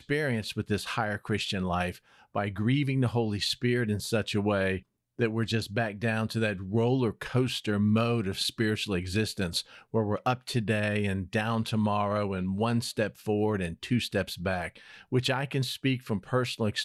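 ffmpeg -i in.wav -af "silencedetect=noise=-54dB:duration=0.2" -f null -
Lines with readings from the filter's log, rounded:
silence_start: 4.83
silence_end: 5.19 | silence_duration: 0.36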